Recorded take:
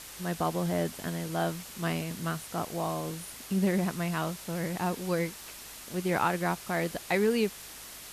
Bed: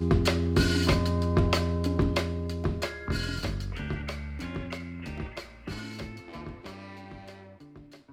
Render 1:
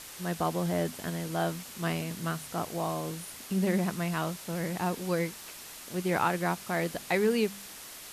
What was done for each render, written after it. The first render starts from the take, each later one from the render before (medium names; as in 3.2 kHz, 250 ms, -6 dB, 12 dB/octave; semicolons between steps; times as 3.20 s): de-hum 50 Hz, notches 5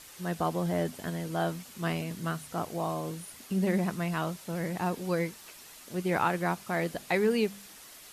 noise reduction 6 dB, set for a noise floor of -46 dBFS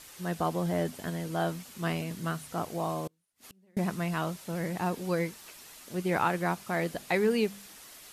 3.07–3.77 s: inverted gate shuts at -36 dBFS, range -36 dB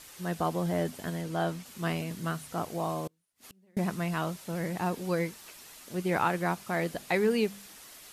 1.21–1.66 s: treble shelf 11 kHz -8 dB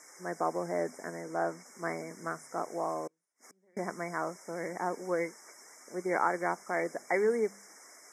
Chebyshev band-pass 380–6900 Hz, order 2; FFT band-reject 2.3–5 kHz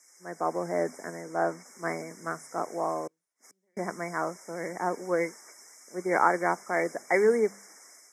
level rider gain up to 4 dB; three bands expanded up and down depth 40%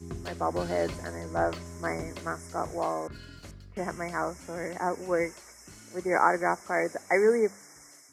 add bed -15 dB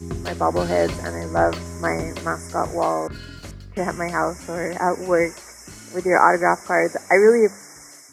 trim +9 dB; peak limiter -1 dBFS, peak gain reduction 1.5 dB